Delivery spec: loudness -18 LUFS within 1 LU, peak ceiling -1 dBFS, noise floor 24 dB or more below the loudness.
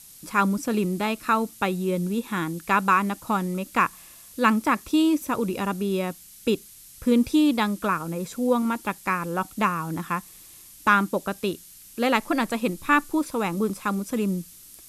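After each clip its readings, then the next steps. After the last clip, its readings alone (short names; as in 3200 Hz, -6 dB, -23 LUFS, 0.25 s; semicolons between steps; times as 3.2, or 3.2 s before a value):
noise floor -48 dBFS; noise floor target -49 dBFS; loudness -25.0 LUFS; peak -7.0 dBFS; loudness target -18.0 LUFS
-> denoiser 6 dB, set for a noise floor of -48 dBFS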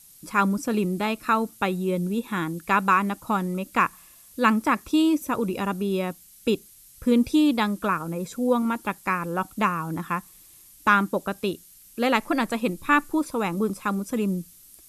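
noise floor -51 dBFS; loudness -25.0 LUFS; peak -7.0 dBFS; loudness target -18.0 LUFS
-> gain +7 dB; limiter -1 dBFS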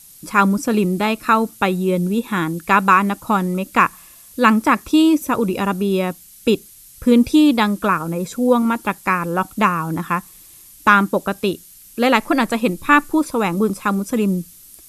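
loudness -18.0 LUFS; peak -1.0 dBFS; noise floor -44 dBFS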